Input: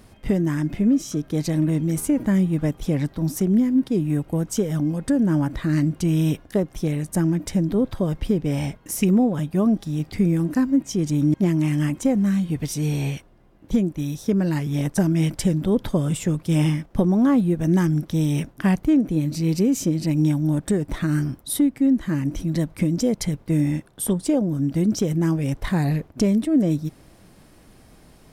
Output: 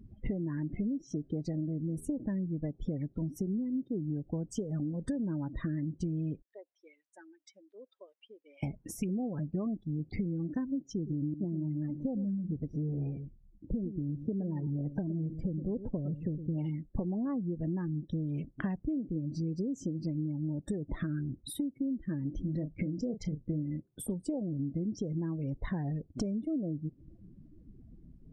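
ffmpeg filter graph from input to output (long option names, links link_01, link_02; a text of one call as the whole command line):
ffmpeg -i in.wav -filter_complex "[0:a]asettb=1/sr,asplit=3[link_01][link_02][link_03];[link_01]atrim=end=6.424[link_04];[link_02]atrim=start=6.42:end=8.63,asetpts=PTS-STARTPTS,afade=type=in:duration=0.004:curve=qsin,afade=type=out:start_time=2.206:duration=0.004:curve=qsin,highpass=380,lowpass=3600,aderivative[link_05];[link_03]atrim=start=8.626[link_06];[link_04][link_05]acrossfade=duration=0.004:curve1=hsin:curve2=qsin[link_07];[link_07][link_06]acrossfade=duration=0.004:curve1=qsin:curve2=hsin,asettb=1/sr,asplit=3[link_08][link_09][link_10];[link_08]atrim=end=10.934[link_11];[link_09]atrim=start=10.93:end=16.58,asetpts=PTS-STARTPTS,afade=type=in:duration=0.004:curve=qsin,afade=type=out:start_time=5.646:duration=0.004:curve=qsin,lowpass=frequency=1000:poles=1,aecho=1:1:111:0.237,atrim=end_sample=249165[link_12];[link_10]atrim=start=16.576[link_13];[link_11][link_12]acrossfade=duration=0.004:curve1=hsin:curve2=qsin[link_14];[link_14][link_13]acrossfade=duration=0.004:curve1=qsin:curve2=hsin,asettb=1/sr,asplit=3[link_15][link_16][link_17];[link_15]atrim=end=22.414[link_18];[link_16]atrim=start=22.41:end=23.63,asetpts=PTS-STARTPTS,afade=type=in:duration=0.004:curve=qsin,afade=type=out:start_time=1.216:duration=0.004:curve=qsin,adynamicsmooth=sensitivity=6.5:basefreq=2400,asplit=2[link_19][link_20];[link_20]adelay=33,volume=-9dB[link_21];[link_19][link_21]amix=inputs=2:normalize=0,atrim=end_sample=53802[link_22];[link_17]atrim=start=23.626[link_23];[link_18][link_22]acrossfade=duration=0.004:curve1=hsin:curve2=qsin[link_24];[link_24][link_23]acrossfade=duration=0.004:curve1=qsin:curve2=hsin,acompressor=threshold=-31dB:ratio=10,afftdn=noise_reduction=33:noise_floor=-42,lowpass=frequency=2900:poles=1" out.wav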